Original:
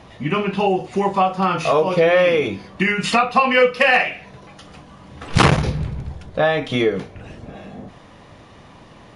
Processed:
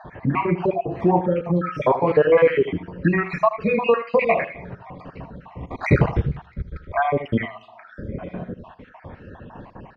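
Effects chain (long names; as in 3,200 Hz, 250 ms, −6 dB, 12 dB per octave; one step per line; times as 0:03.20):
time-frequency cells dropped at random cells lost 57%
low-pass filter 1,800 Hz 12 dB per octave
in parallel at +1 dB: downward compressor, threshold −30 dBFS, peak gain reduction 17.5 dB
on the sum: single-tap delay 72 ms −13 dB
on a send at −22 dB: convolution reverb RT60 0.85 s, pre-delay 6 ms
on the sum: wrong playback speed 48 kHz file played as 44.1 kHz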